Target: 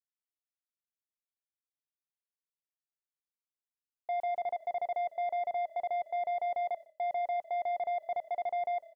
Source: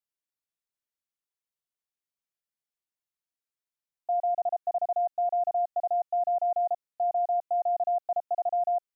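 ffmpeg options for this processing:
ffmpeg -i in.wav -filter_complex "[0:a]asoftclip=type=tanh:threshold=-26.5dB,alimiter=level_in=13.5dB:limit=-24dB:level=0:latency=1:release=16,volume=-13.5dB,asplit=5[link_01][link_02][link_03][link_04][link_05];[link_02]adelay=153,afreqshift=-34,volume=-21.5dB[link_06];[link_03]adelay=306,afreqshift=-68,volume=-27.5dB[link_07];[link_04]adelay=459,afreqshift=-102,volume=-33.5dB[link_08];[link_05]adelay=612,afreqshift=-136,volume=-39.6dB[link_09];[link_01][link_06][link_07][link_08][link_09]amix=inputs=5:normalize=0,agate=range=-33dB:threshold=-51dB:ratio=3:detection=peak,volume=8dB" out.wav

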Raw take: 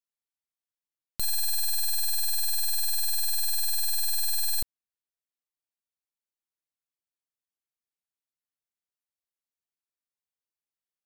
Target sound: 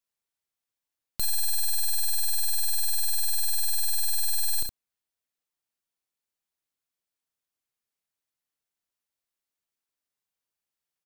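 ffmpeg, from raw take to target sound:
ffmpeg -i in.wav -af "aecho=1:1:34|66:0.141|0.335,asoftclip=type=tanh:threshold=-25.5dB,volume=4dB" out.wav

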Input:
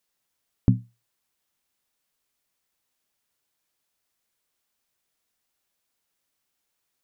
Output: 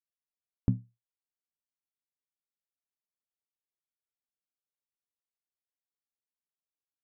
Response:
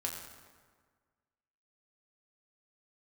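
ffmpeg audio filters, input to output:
-af "afftdn=noise_reduction=15:noise_floor=-56,adynamicsmooth=sensitivity=7.5:basefreq=1200,volume=-7.5dB"

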